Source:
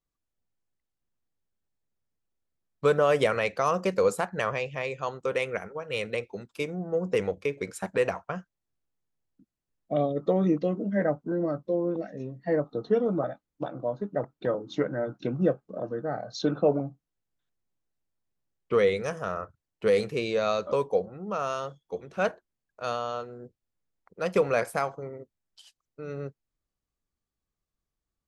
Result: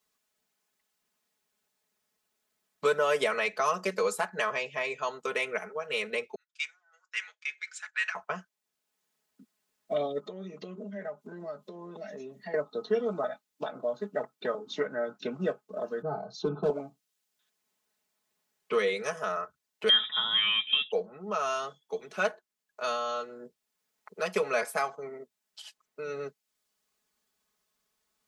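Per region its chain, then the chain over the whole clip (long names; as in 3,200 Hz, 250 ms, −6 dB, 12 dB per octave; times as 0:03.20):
0:06.35–0:08.15: elliptic band-pass filter 1,500–7,300 Hz, stop band 70 dB + multiband upward and downward expander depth 100%
0:10.19–0:12.54: comb filter 5 ms, depth 44% + downward compressor 3 to 1, threshold −41 dBFS
0:16.02–0:16.70: hard clipping −18 dBFS + spectral tilt −4.5 dB per octave + phaser with its sweep stopped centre 370 Hz, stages 8
0:19.89–0:20.92: voice inversion scrambler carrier 3,700 Hz + hollow resonant body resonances 200/1,800 Hz, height 12 dB, ringing for 25 ms
whole clip: high-pass filter 760 Hz 6 dB per octave; comb filter 4.7 ms, depth 83%; multiband upward and downward compressor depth 40%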